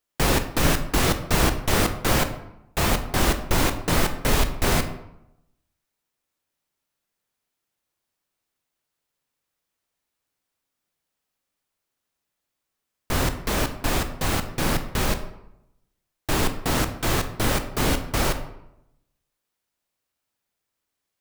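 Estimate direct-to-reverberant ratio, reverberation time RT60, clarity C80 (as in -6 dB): 8.0 dB, 0.85 s, 13.5 dB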